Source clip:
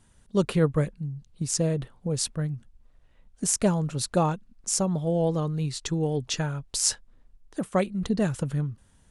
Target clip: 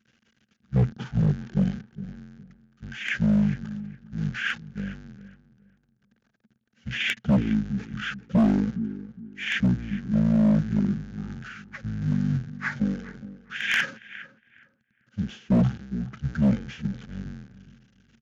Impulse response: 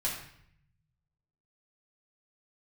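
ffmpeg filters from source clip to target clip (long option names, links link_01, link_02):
-filter_complex "[0:a]aeval=exprs='val(0)+0.5*0.0316*sgn(val(0))':channel_layout=same,equalizer=frequency=700:width=5:gain=13,asetrate=28595,aresample=44100,atempo=1.54221,agate=range=-33dB:threshold=-21dB:ratio=3:detection=peak,equalizer=frequency=250:width_type=o:width=0.33:gain=11,equalizer=frequency=400:width_type=o:width=0.33:gain=9,equalizer=frequency=1250:width_type=o:width=0.33:gain=-8,equalizer=frequency=2000:width_type=o:width=0.33:gain=-11,equalizer=frequency=3150:width_type=o:width=0.33:gain=12,asplit=2[link_01][link_02];[link_02]adelay=206,lowpass=frequency=3700:poles=1,volume=-15dB,asplit=2[link_03][link_04];[link_04]adelay=206,lowpass=frequency=3700:poles=1,volume=0.25,asplit=2[link_05][link_06];[link_06]adelay=206,lowpass=frequency=3700:poles=1,volume=0.25[link_07];[link_03][link_05][link_07]amix=inputs=3:normalize=0[link_08];[link_01][link_08]amix=inputs=2:normalize=0,asetrate=22050,aresample=44100,highpass=110,volume=13.5dB,asoftclip=hard,volume=-13.5dB,volume=-2.5dB"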